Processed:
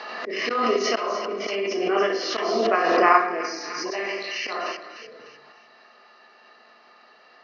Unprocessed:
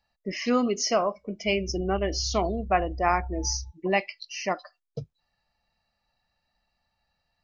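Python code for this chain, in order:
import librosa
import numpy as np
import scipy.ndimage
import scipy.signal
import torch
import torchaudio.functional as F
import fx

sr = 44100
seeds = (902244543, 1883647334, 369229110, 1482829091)

p1 = fx.bin_compress(x, sr, power=0.6)
p2 = fx.room_shoebox(p1, sr, seeds[0], volume_m3=260.0, walls='mixed', distance_m=1.4)
p3 = fx.auto_swell(p2, sr, attack_ms=237.0)
p4 = fx.low_shelf(p3, sr, hz=470.0, db=4.5)
p5 = fx.level_steps(p4, sr, step_db=14)
p6 = p4 + (p5 * 10.0 ** (1.5 / 20.0))
p7 = fx.cabinet(p6, sr, low_hz=370.0, low_slope=24, high_hz=4200.0, hz=(580.0, 830.0, 1200.0, 1700.0, 2500.0), db=(-7, -7, 5, 3, -5))
p8 = p7 + fx.echo_wet_highpass(p7, sr, ms=300, feedback_pct=39, hz=2100.0, wet_db=-5, dry=0)
p9 = fx.pre_swell(p8, sr, db_per_s=26.0)
y = p9 * 10.0 ** (-5.5 / 20.0)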